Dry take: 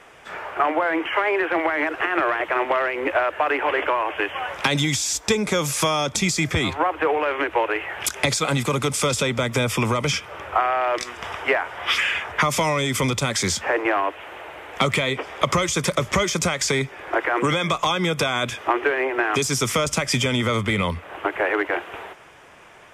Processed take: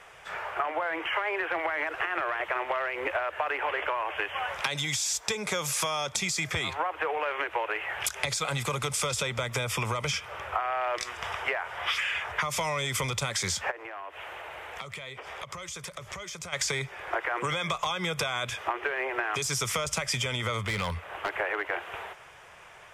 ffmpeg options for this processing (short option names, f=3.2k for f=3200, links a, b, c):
-filter_complex "[0:a]asettb=1/sr,asplit=3[a][b][c];[a]atrim=end=4.624[d];[b]atrim=start=4.62:end=7.89,asetpts=PTS-STARTPTS,afade=t=in:d=0.004:c=qsin,afade=t=out:st=3.266:d=0.004:c=qsin,highpass=f=150:p=1[e];[c]atrim=start=7.886[f];[d][e]acrossfade=d=0.004:c1=hsin:c2=qsin[g];[g][f]acrossfade=d=0.004:c1=qsin:c2=hsin,asplit=3[h][i][j];[h]afade=t=out:st=13.7:d=0.02[k];[i]acompressor=threshold=-33dB:ratio=8:attack=3.2:release=140:knee=1:detection=peak,afade=t=in:st=13.7:d=0.02,afade=t=out:st=16.52:d=0.02[l];[j]afade=t=in:st=16.52:d=0.02[m];[k][l][m]amix=inputs=3:normalize=0,asettb=1/sr,asplit=3[n][o][p];[n]atrim=end=20.664[q];[o]atrim=start=20.66:end=21.3,asetpts=PTS-STARTPTS,afade=t=in:d=0.004:c=qsin,afade=t=out:st=0.636:d=0.004:c=qsin,asoftclip=type=hard:threshold=-19.5dB[r];[p]atrim=start=21.296[s];[q][r]acrossfade=d=0.004:c1=hsin:c2=qsin[t];[t][s]acrossfade=d=0.004:c1=qsin:c2=hsin,equalizer=f=270:t=o:w=0.98:g=-13.5,acompressor=threshold=-24dB:ratio=6,volume=-2dB"